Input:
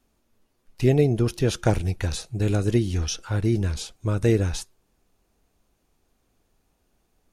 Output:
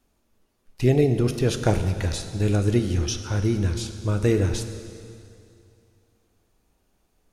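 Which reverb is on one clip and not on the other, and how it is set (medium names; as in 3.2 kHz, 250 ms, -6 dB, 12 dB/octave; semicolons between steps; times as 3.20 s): plate-style reverb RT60 2.5 s, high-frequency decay 0.95×, DRR 7.5 dB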